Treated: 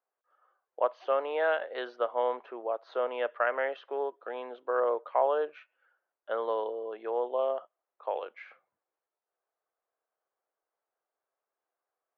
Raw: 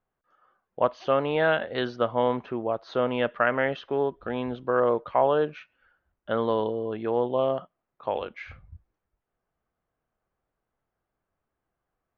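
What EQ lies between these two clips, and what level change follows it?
high-pass 440 Hz 24 dB/octave; low-pass 1.7 kHz 6 dB/octave; -3.0 dB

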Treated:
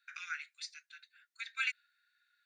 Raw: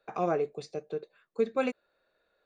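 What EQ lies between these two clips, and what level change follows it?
dynamic bell 2.9 kHz, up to +6 dB, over -51 dBFS, Q 0.78; rippled Chebyshev high-pass 1.4 kHz, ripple 3 dB; +3.5 dB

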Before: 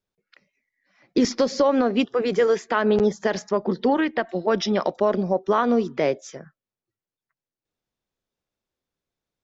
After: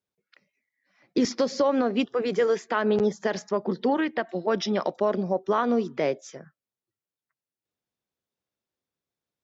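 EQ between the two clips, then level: high-pass 80 Hz; -3.5 dB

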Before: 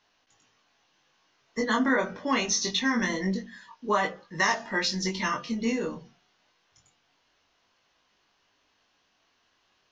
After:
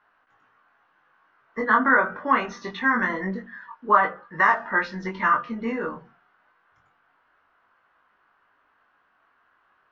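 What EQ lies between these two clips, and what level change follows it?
resonant low-pass 1.4 kHz, resonance Q 3.2; bass shelf 500 Hz -6 dB; +3.5 dB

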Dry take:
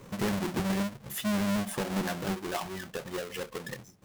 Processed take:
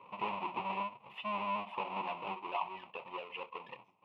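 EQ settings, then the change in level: two resonant band-passes 1.6 kHz, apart 1.4 oct; distance through air 490 m; +10.5 dB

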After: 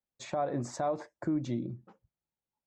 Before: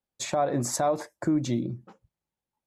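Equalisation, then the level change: low-pass 7.7 kHz 24 dB/octave; treble shelf 3.7 kHz -9.5 dB; -6.0 dB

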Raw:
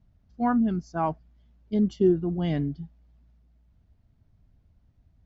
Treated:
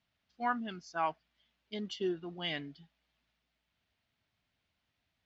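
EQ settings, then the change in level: band-pass filter 3 kHz, Q 1.3; +7.5 dB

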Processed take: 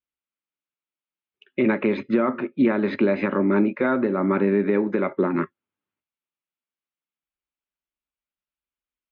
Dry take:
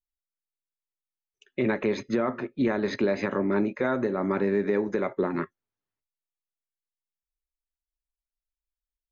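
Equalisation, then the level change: cabinet simulation 120–3000 Hz, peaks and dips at 120 Hz -9 dB, 450 Hz -6 dB, 710 Hz -7 dB, 1 kHz -3 dB, 1.8 kHz -6 dB; +7.5 dB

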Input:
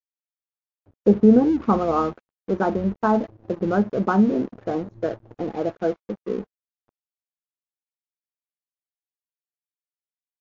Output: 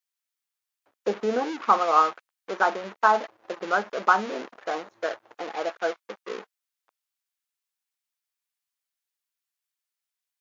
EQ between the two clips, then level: high-pass 1.1 kHz 12 dB/octave; +8.5 dB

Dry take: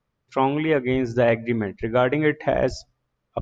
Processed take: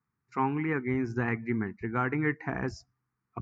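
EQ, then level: high-pass 100 Hz; distance through air 67 m; static phaser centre 1.4 kHz, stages 4; -3.0 dB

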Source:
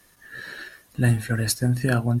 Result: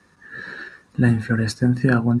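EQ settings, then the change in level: tone controls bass +5 dB, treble -13 dB; cabinet simulation 100–8800 Hz, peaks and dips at 120 Hz -9 dB, 320 Hz -3 dB, 640 Hz -9 dB, 2.1 kHz -6 dB, 3.1 kHz -9 dB; +6.0 dB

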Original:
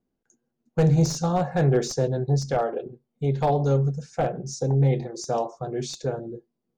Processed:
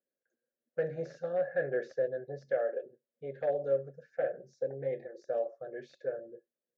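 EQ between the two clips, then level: two resonant band-passes 970 Hz, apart 1.6 oct; distance through air 110 m; 0.0 dB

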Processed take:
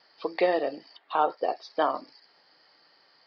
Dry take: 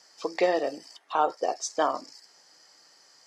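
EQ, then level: steep low-pass 4.7 kHz 72 dB/octave; 0.0 dB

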